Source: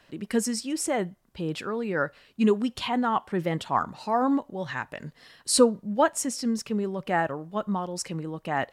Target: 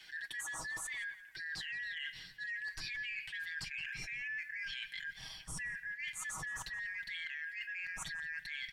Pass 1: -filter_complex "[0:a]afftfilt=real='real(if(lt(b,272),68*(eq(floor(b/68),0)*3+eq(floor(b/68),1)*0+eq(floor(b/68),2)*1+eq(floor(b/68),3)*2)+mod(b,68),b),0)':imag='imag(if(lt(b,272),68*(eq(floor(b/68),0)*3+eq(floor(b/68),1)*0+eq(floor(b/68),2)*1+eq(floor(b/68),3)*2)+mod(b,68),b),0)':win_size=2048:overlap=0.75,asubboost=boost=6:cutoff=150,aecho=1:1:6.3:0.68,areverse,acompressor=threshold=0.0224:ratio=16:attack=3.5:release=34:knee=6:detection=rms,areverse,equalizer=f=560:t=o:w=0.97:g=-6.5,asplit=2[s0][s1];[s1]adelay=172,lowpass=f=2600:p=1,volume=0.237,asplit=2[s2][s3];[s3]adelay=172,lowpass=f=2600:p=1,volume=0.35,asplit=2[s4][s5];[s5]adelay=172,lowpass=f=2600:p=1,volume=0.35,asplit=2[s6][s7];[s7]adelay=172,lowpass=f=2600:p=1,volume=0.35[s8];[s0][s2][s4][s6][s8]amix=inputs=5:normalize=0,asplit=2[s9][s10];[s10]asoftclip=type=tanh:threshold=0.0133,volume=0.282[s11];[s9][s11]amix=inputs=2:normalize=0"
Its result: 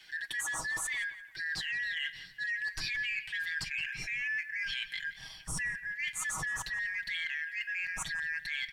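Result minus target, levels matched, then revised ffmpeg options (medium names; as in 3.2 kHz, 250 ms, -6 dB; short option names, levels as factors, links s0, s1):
compression: peak gain reduction -7.5 dB
-filter_complex "[0:a]afftfilt=real='real(if(lt(b,272),68*(eq(floor(b/68),0)*3+eq(floor(b/68),1)*0+eq(floor(b/68),2)*1+eq(floor(b/68),3)*2)+mod(b,68),b),0)':imag='imag(if(lt(b,272),68*(eq(floor(b/68),0)*3+eq(floor(b/68),1)*0+eq(floor(b/68),2)*1+eq(floor(b/68),3)*2)+mod(b,68),b),0)':win_size=2048:overlap=0.75,asubboost=boost=6:cutoff=150,aecho=1:1:6.3:0.68,areverse,acompressor=threshold=0.00891:ratio=16:attack=3.5:release=34:knee=6:detection=rms,areverse,equalizer=f=560:t=o:w=0.97:g=-6.5,asplit=2[s0][s1];[s1]adelay=172,lowpass=f=2600:p=1,volume=0.237,asplit=2[s2][s3];[s3]adelay=172,lowpass=f=2600:p=1,volume=0.35,asplit=2[s4][s5];[s5]adelay=172,lowpass=f=2600:p=1,volume=0.35,asplit=2[s6][s7];[s7]adelay=172,lowpass=f=2600:p=1,volume=0.35[s8];[s0][s2][s4][s6][s8]amix=inputs=5:normalize=0,asplit=2[s9][s10];[s10]asoftclip=type=tanh:threshold=0.0133,volume=0.282[s11];[s9][s11]amix=inputs=2:normalize=0"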